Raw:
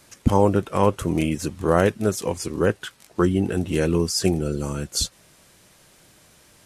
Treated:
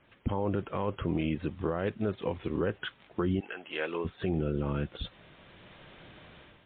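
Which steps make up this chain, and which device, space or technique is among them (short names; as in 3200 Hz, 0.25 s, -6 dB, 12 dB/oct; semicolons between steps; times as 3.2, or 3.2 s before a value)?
3.39–4.04 HPF 1300 Hz -> 580 Hz 12 dB/oct; low-bitrate web radio (AGC gain up to 12 dB; limiter -12 dBFS, peak gain reduction 11 dB; gain -7 dB; MP3 40 kbps 8000 Hz)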